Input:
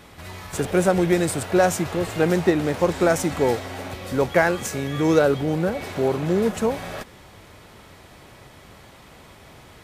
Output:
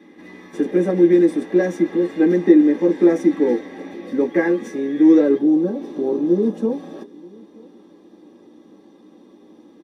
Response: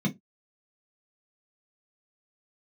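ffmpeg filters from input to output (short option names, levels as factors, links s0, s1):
-filter_complex "[0:a]asetnsamples=n=441:p=0,asendcmd='5.38 equalizer g -3.5',equalizer=f=2000:t=o:w=0.67:g=12,asplit=2[s0][s1];[s1]adelay=932.9,volume=0.0631,highshelf=f=4000:g=-21[s2];[s0][s2]amix=inputs=2:normalize=0[s3];[1:a]atrim=start_sample=2205,asetrate=70560,aresample=44100[s4];[s3][s4]afir=irnorm=-1:irlink=0,volume=0.211"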